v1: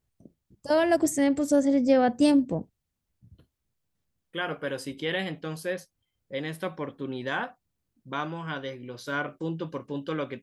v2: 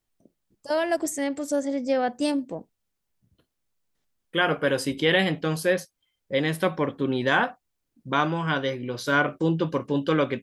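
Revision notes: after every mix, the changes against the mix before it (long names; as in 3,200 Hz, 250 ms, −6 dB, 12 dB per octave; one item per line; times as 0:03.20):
first voice: add parametric band 89 Hz −13.5 dB 2.9 octaves
second voice +8.5 dB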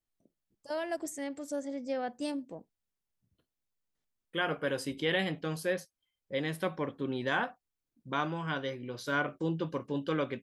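first voice −10.5 dB
second voice −9.0 dB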